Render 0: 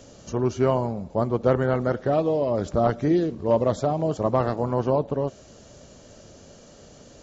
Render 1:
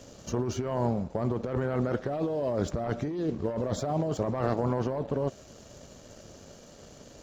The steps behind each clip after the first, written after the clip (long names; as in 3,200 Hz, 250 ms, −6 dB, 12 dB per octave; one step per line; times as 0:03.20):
leveller curve on the samples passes 1
compressor whose output falls as the input rises −23 dBFS, ratio −1
level −6 dB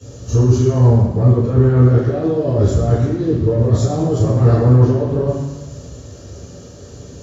convolution reverb RT60 1.0 s, pre-delay 3 ms, DRR −18 dB
level −8 dB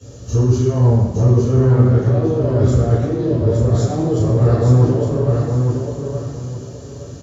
repeating echo 864 ms, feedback 27%, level −5 dB
level −2 dB